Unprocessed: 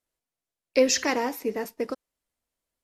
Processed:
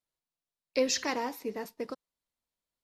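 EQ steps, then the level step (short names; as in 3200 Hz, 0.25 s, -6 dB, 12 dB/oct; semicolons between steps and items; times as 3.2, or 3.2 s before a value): fifteen-band EQ 160 Hz +5 dB, 1000 Hz +4 dB, 4000 Hz +6 dB; -8.0 dB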